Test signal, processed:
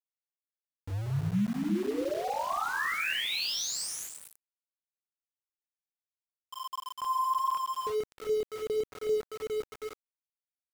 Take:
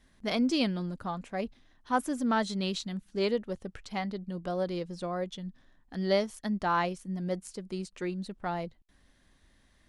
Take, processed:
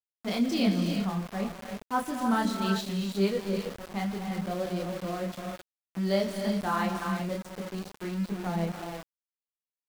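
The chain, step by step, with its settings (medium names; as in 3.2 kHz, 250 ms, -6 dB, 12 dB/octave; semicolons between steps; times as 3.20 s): level-controlled noise filter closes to 420 Hz, open at -28 dBFS; on a send: feedback delay 66 ms, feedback 29%, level -21.5 dB; on the sum: chorus voices 4, 1.3 Hz, delay 28 ms, depth 3 ms; gated-style reverb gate 390 ms rising, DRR 4 dB; dynamic bell 180 Hz, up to +6 dB, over -49 dBFS, Q 2.4; small samples zeroed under -39 dBFS; trim +1.5 dB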